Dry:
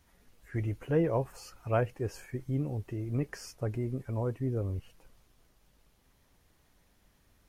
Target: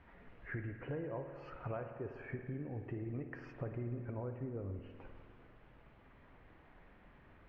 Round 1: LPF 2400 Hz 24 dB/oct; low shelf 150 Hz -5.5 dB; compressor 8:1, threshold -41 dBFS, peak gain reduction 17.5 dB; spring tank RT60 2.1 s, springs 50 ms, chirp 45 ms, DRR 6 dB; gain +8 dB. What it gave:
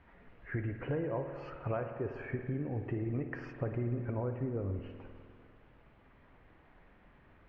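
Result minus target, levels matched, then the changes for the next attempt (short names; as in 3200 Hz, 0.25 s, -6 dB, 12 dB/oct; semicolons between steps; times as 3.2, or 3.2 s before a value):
compressor: peak gain reduction -6.5 dB
change: compressor 8:1, threshold -48.5 dBFS, peak gain reduction 24 dB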